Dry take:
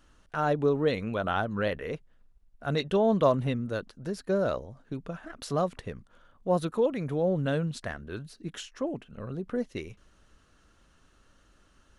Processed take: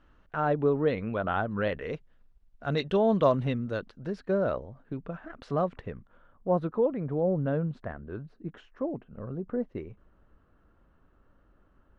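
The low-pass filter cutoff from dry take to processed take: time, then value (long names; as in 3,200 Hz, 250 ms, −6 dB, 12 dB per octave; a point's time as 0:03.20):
0:01.48 2,300 Hz
0:01.89 4,600 Hz
0:03.64 4,600 Hz
0:04.53 2,200 Hz
0:05.89 2,200 Hz
0:06.90 1,200 Hz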